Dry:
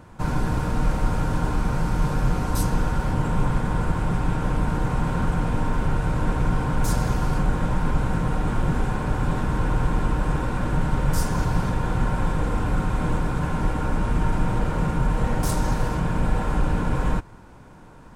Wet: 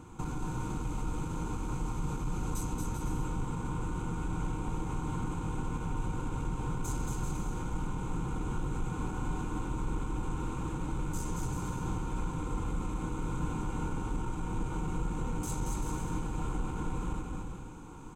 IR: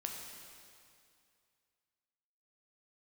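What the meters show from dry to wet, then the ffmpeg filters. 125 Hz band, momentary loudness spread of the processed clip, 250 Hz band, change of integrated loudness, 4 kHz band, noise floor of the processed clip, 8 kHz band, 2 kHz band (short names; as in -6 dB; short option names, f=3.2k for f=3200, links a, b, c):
-12.0 dB, 1 LU, -10.0 dB, -11.5 dB, -12.5 dB, -39 dBFS, -6.0 dB, -15.0 dB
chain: -filter_complex "[0:a]asoftclip=type=tanh:threshold=-16dB,acompressor=threshold=-30dB:ratio=6,superequalizer=6b=1.78:8b=0.316:11b=0.316:14b=0.631:15b=2.51,asplit=2[a][b];[b]aecho=0:1:230|391|503.7|582.6|637.8:0.631|0.398|0.251|0.158|0.1[c];[a][c]amix=inputs=2:normalize=0,volume=-3.5dB"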